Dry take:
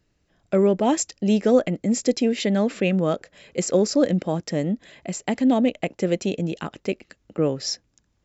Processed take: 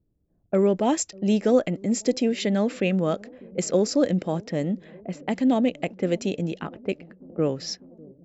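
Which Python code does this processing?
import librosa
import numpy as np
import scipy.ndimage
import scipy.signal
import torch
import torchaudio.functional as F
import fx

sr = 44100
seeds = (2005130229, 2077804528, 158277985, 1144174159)

y = fx.echo_wet_lowpass(x, sr, ms=597, feedback_pct=72, hz=530.0, wet_db=-22.5)
y = fx.env_lowpass(y, sr, base_hz=390.0, full_db=-20.0)
y = y * librosa.db_to_amplitude(-2.0)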